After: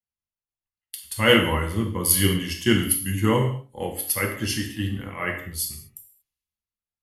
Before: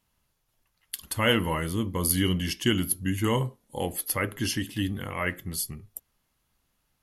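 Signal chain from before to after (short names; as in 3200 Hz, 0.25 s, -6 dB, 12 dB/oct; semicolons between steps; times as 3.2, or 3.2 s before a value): bell 2200 Hz +2.5 dB; non-linear reverb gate 0.26 s falling, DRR 1.5 dB; three-band expander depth 70%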